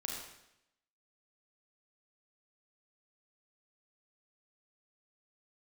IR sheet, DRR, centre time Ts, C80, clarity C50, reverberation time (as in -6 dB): -1.5 dB, 59 ms, 3.5 dB, 1.0 dB, 0.80 s